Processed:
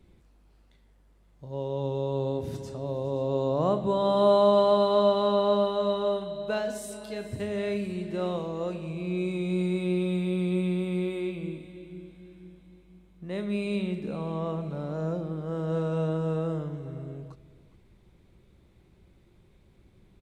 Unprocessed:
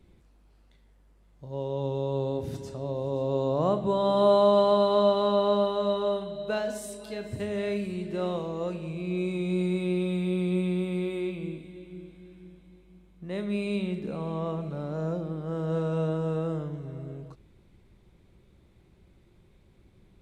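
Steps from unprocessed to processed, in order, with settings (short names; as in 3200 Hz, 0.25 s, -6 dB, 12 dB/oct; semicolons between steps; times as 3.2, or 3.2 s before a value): echo 0.412 s -19 dB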